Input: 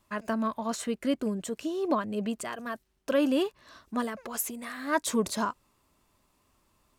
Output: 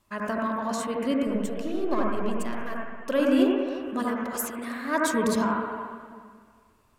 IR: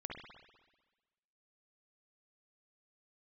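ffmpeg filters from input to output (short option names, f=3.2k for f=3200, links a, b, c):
-filter_complex "[0:a]asettb=1/sr,asplit=3[a][b][c];[a]atrim=end=1.274[d];[b]atrim=start=1.27:end=2.74,asetpts=PTS-STARTPTS,afade=t=in:d=0.004:c=qsin,afade=t=out:st=1.466:d=0.004:c=qsin,aeval=exprs='if(lt(val(0),0),0.447*val(0),val(0))':c=same[e];[c]atrim=start=2.736[f];[d][e]acrossfade=d=0.004:c1=hsin:c2=qsin[g];[g][f]acrossfade=d=0.004:c1=qsin:c2=hsin[h];[1:a]atrim=start_sample=2205,asetrate=31311,aresample=44100[i];[h][i]afir=irnorm=-1:irlink=0,volume=3.5dB"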